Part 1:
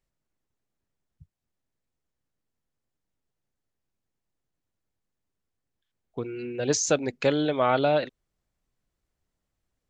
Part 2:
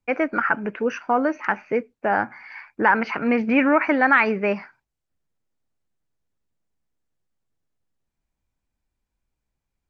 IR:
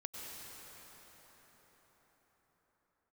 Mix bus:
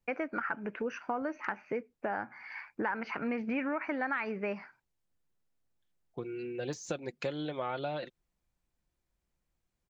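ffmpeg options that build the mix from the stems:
-filter_complex "[0:a]deesser=0.75,aecho=1:1:5.7:0.41,volume=-6dB[a];[1:a]volume=-4.5dB[b];[a][b]amix=inputs=2:normalize=0,acompressor=threshold=-34dB:ratio=3"

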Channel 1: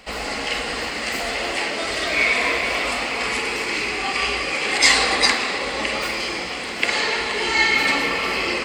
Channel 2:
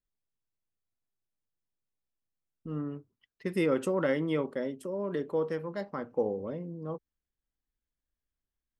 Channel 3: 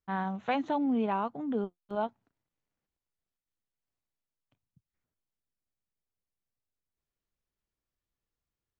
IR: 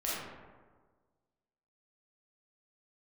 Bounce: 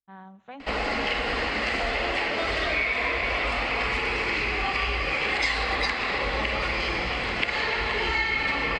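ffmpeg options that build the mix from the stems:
-filter_complex "[0:a]lowpass=3.3k,asubboost=boost=5:cutoff=110,adelay=600,volume=3dB[a];[2:a]volume=-13dB,asplit=2[b][c];[c]volume=-24dB[d];[3:a]atrim=start_sample=2205[e];[d][e]afir=irnorm=-1:irlink=0[f];[a][b][f]amix=inputs=3:normalize=0,acompressor=threshold=-23dB:ratio=6"

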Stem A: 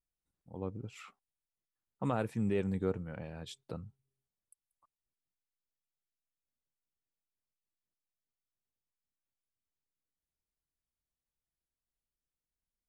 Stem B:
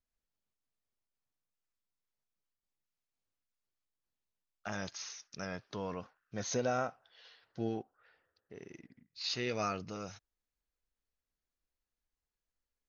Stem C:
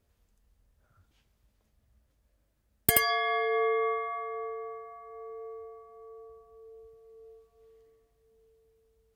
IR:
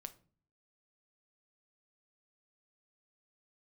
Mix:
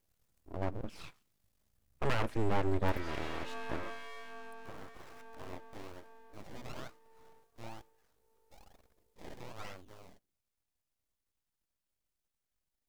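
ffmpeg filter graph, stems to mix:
-filter_complex "[0:a]adynamicequalizer=threshold=0.00282:dfrequency=1100:dqfactor=1.3:tfrequency=1100:tqfactor=1.3:attack=5:release=100:ratio=0.375:range=2.5:mode=boostabove:tftype=bell,aeval=exprs='clip(val(0),-1,0.0447)':c=same,volume=2.5dB,asplit=2[a][b];[b]volume=-4dB[c];[1:a]aphaser=in_gain=1:out_gain=1:delay=2.7:decay=0.48:speed=0.18:type=triangular,acrusher=samples=24:mix=1:aa=0.000001:lfo=1:lforange=24:lforate=1.1,volume=-10dB,asplit=2[d][e];[e]volume=-11dB[f];[2:a]aeval=exprs='if(lt(val(0),0),0.447*val(0),val(0))':c=same,highshelf=f=4.7k:g=10,acompressor=threshold=-42dB:ratio=1.5,volume=-4.5dB[g];[3:a]atrim=start_sample=2205[h];[c][f]amix=inputs=2:normalize=0[i];[i][h]afir=irnorm=-1:irlink=0[j];[a][d][g][j]amix=inputs=4:normalize=0,acrossover=split=2800[k][l];[l]acompressor=threshold=-58dB:ratio=4:attack=1:release=60[m];[k][m]amix=inputs=2:normalize=0,aeval=exprs='abs(val(0))':c=same"

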